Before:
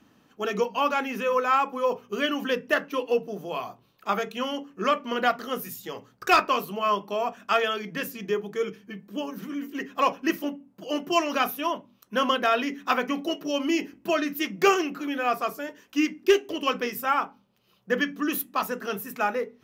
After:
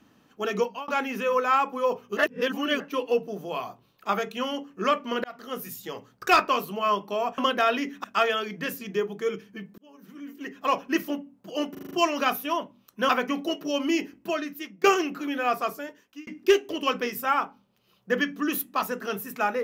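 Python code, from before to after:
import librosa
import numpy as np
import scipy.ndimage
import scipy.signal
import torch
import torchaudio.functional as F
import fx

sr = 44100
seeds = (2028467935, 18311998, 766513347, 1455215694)

y = fx.edit(x, sr, fx.fade_out_span(start_s=0.63, length_s=0.25),
    fx.reverse_span(start_s=2.17, length_s=0.63),
    fx.fade_in_span(start_s=5.24, length_s=0.63, curve='qsin'),
    fx.fade_in_span(start_s=9.12, length_s=1.12),
    fx.stutter(start_s=11.05, slice_s=0.04, count=6),
    fx.move(start_s=12.23, length_s=0.66, to_s=7.38),
    fx.fade_out_to(start_s=13.79, length_s=0.85, floor_db=-17.0),
    fx.fade_out_span(start_s=15.51, length_s=0.56), tone=tone)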